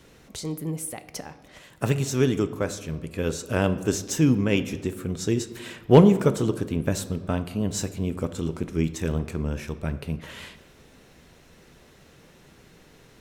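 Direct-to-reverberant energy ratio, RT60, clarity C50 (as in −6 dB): 11.0 dB, 1.4 s, 14.0 dB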